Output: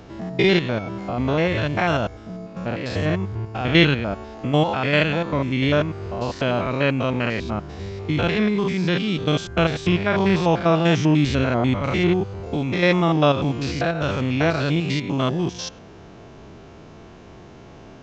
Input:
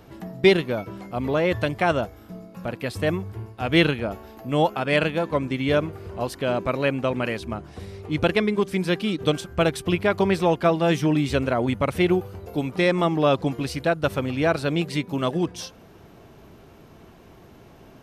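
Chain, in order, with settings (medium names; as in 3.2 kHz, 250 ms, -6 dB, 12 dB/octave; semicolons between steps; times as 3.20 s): spectrogram pixelated in time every 100 ms; dynamic bell 440 Hz, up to -5 dB, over -32 dBFS, Q 0.79; resampled via 16 kHz; trim +7 dB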